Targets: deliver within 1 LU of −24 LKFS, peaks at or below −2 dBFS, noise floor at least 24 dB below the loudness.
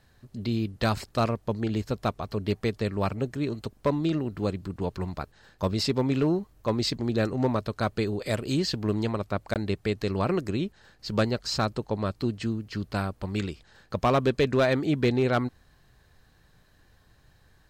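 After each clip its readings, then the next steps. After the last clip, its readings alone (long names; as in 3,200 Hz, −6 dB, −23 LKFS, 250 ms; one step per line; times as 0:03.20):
share of clipped samples 0.3%; peaks flattened at −16.0 dBFS; number of dropouts 1; longest dropout 18 ms; integrated loudness −28.5 LKFS; sample peak −16.0 dBFS; target loudness −24.0 LKFS
→ clipped peaks rebuilt −16 dBFS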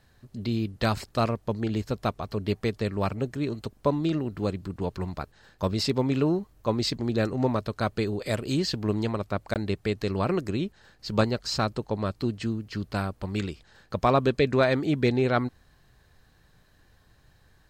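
share of clipped samples 0.0%; number of dropouts 1; longest dropout 18 ms
→ repair the gap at 0:09.54, 18 ms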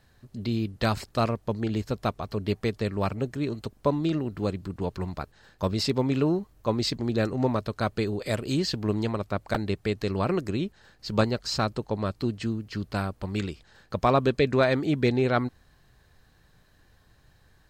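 number of dropouts 0; integrated loudness −28.0 LKFS; sample peak −7.0 dBFS; target loudness −24.0 LKFS
→ level +4 dB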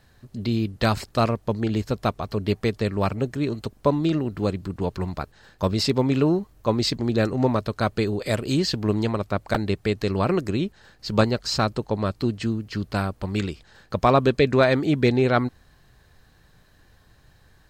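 integrated loudness −24.0 LKFS; sample peak −3.0 dBFS; background noise floor −57 dBFS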